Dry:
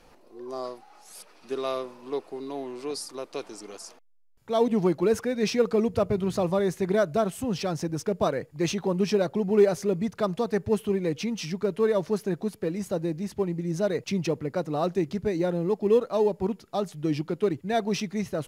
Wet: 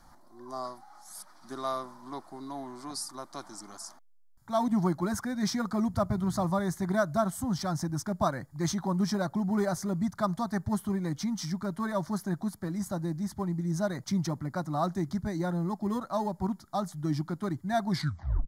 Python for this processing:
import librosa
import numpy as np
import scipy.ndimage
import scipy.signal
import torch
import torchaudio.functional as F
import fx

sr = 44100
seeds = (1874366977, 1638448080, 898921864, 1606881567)

y = fx.tape_stop_end(x, sr, length_s=0.59)
y = fx.fixed_phaser(y, sr, hz=1100.0, stages=4)
y = y * 10.0 ** (2.0 / 20.0)